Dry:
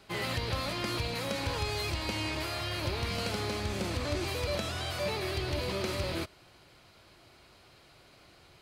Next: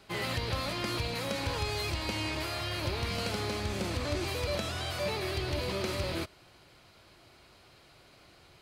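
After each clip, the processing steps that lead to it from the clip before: no audible change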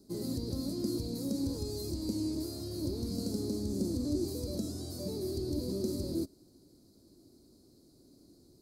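FFT filter 140 Hz 0 dB, 270 Hz +14 dB, 780 Hz -14 dB, 2 kHz -28 dB, 3 kHz -30 dB, 4.3 kHz -2 dB, 12 kHz +5 dB; trim -4 dB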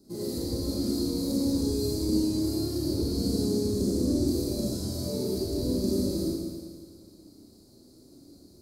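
Schroeder reverb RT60 1.8 s, combs from 28 ms, DRR -6.5 dB

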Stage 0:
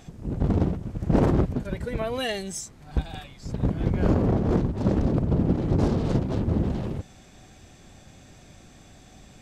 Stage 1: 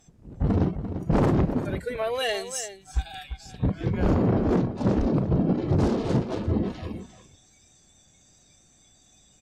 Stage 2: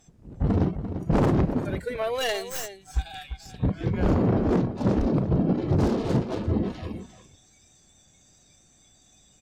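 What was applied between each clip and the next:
spectral noise reduction 16 dB; echo from a far wall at 59 m, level -11 dB; sine folder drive 6 dB, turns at -8 dBFS; trim -7.5 dB
tracing distortion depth 0.1 ms

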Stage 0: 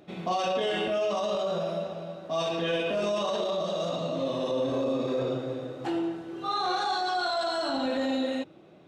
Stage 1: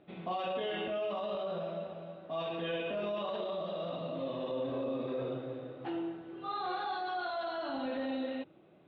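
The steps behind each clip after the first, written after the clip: steep low-pass 3.6 kHz 36 dB/octave; trim -7.5 dB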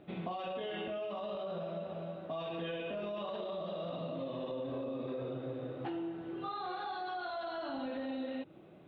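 compression, threshold -41 dBFS, peak gain reduction 9 dB; bass shelf 220 Hz +4.5 dB; trim +3.5 dB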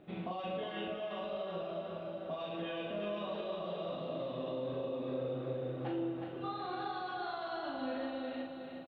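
doubling 39 ms -4.5 dB; feedback delay 365 ms, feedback 49%, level -6 dB; trim -2 dB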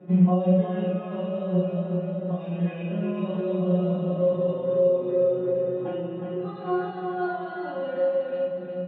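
feedback comb 180 Hz, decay 0.16 s, harmonics all, mix 100%; reverberation RT60 0.15 s, pre-delay 3 ms, DRR -3.5 dB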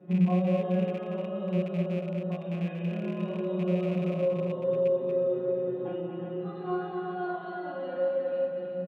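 rattle on loud lows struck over -27 dBFS, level -31 dBFS; delay 236 ms -5.5 dB; trim -5.5 dB

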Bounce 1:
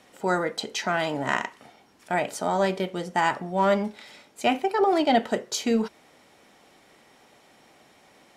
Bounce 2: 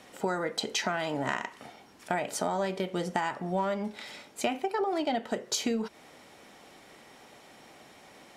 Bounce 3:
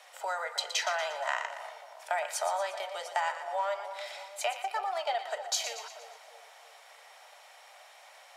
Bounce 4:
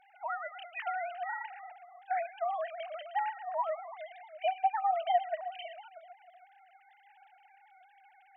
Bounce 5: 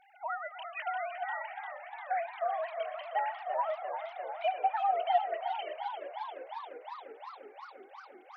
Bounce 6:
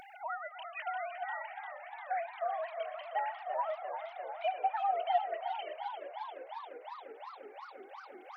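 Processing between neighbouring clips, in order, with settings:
compression 12:1, threshold -29 dBFS, peak gain reduction 14 dB; trim +3 dB
steep high-pass 570 Hz 48 dB/octave; on a send: two-band feedback delay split 920 Hz, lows 317 ms, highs 118 ms, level -10 dB
formants replaced by sine waves; trim -1 dB
modulated delay 351 ms, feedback 79%, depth 132 cents, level -9.5 dB
upward compressor, threshold -40 dBFS; trim -2.5 dB

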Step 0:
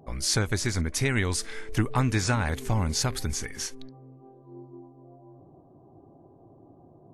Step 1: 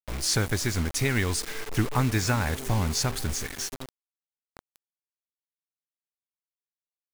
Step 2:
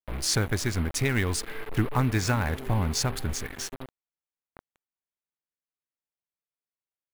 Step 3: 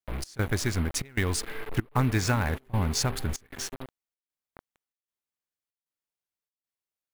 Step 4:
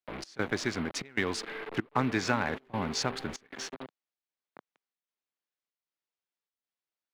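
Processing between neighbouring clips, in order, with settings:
bit crusher 6-bit
local Wiener filter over 9 samples
trance gate "xxx..xxxxx" 192 bpm -24 dB
three-band isolator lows -21 dB, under 170 Hz, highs -21 dB, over 5.9 kHz

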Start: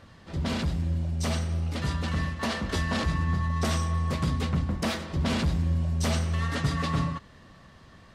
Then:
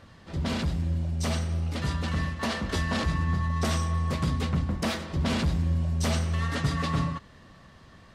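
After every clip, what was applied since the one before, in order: no audible change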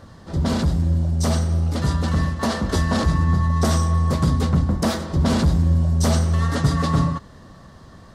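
peaking EQ 2.5 kHz -11.5 dB 1 oct; trim +8.5 dB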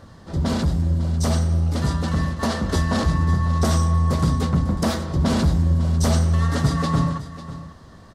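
delay 547 ms -14.5 dB; trim -1 dB

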